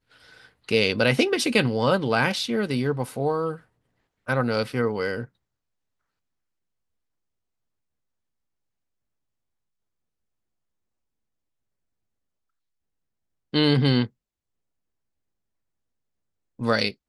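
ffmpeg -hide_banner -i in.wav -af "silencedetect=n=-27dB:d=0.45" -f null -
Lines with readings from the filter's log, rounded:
silence_start: 0.00
silence_end: 0.69 | silence_duration: 0.69
silence_start: 3.54
silence_end: 4.29 | silence_duration: 0.75
silence_start: 5.23
silence_end: 13.54 | silence_duration: 8.31
silence_start: 14.05
silence_end: 16.61 | silence_duration: 2.56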